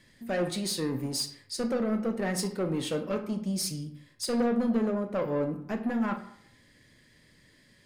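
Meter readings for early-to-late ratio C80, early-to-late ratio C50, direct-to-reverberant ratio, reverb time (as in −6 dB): 13.5 dB, 10.5 dB, 6.0 dB, 0.70 s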